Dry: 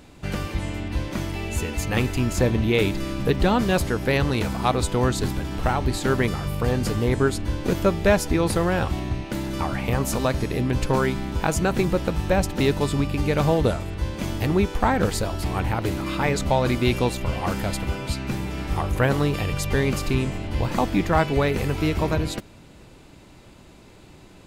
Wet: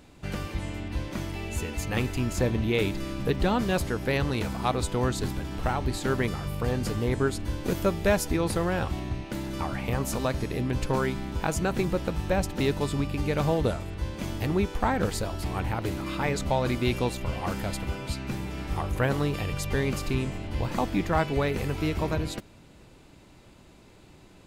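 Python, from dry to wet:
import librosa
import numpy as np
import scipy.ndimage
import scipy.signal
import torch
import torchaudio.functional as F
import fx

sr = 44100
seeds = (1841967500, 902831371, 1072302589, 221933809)

y = fx.high_shelf(x, sr, hz=8500.0, db=7.0, at=(7.39, 8.37))
y = y * 10.0 ** (-5.0 / 20.0)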